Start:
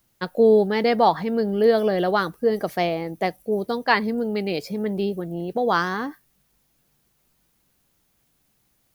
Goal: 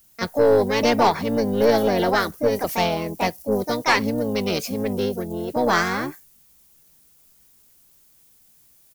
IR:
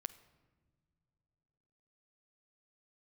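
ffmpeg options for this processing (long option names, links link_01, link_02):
-filter_complex "[0:a]crystalizer=i=2:c=0,asplit=3[link_01][link_02][link_03];[link_02]asetrate=22050,aresample=44100,atempo=2,volume=-9dB[link_04];[link_03]asetrate=55563,aresample=44100,atempo=0.793701,volume=-3dB[link_05];[link_01][link_04][link_05]amix=inputs=3:normalize=0,aeval=exprs='(tanh(2.82*val(0)+0.25)-tanh(0.25))/2.82':channel_layout=same"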